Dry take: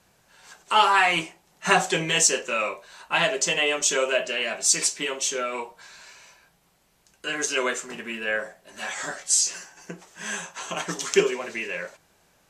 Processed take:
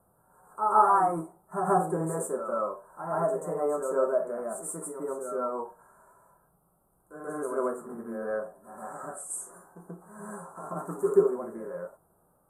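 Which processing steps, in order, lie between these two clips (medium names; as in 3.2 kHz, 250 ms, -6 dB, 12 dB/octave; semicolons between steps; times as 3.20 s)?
Chebyshev band-stop 1.3–9.1 kHz, order 4; reverse echo 134 ms -7 dB; harmonic-percussive split percussive -7 dB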